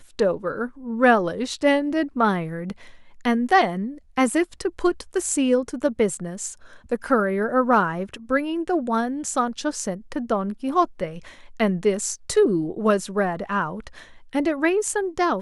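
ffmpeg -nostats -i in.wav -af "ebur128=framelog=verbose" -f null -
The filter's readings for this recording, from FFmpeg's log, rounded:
Integrated loudness:
  I:         -23.1 LUFS
  Threshold: -33.4 LUFS
Loudness range:
  LRA:         2.5 LU
  Threshold: -43.5 LUFS
  LRA low:   -24.9 LUFS
  LRA high:  -22.4 LUFS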